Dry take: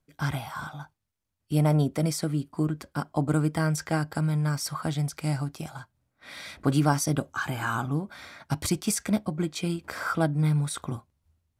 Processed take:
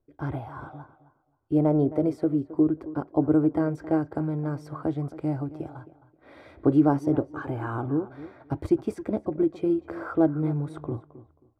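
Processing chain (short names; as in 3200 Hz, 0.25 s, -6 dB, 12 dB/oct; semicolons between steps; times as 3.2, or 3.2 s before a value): EQ curve 120 Hz 0 dB, 180 Hz -13 dB, 330 Hz +8 dB, 6500 Hz -29 dB; on a send: tape echo 0.267 s, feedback 24%, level -14.5 dB, low-pass 2300 Hz; on the sum: gain +2 dB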